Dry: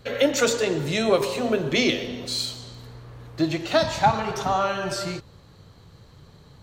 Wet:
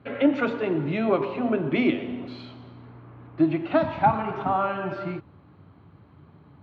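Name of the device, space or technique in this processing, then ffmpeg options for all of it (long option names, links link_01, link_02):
bass cabinet: -af "highpass=frequency=82:width=0.5412,highpass=frequency=82:width=1.3066,equalizer=frequency=120:width_type=q:width=4:gain=-4,equalizer=frequency=290:width_type=q:width=4:gain=7,equalizer=frequency=490:width_type=q:width=4:gain=-9,equalizer=frequency=1800:width_type=q:width=4:gain=-7,lowpass=frequency=2300:width=0.5412,lowpass=frequency=2300:width=1.3066"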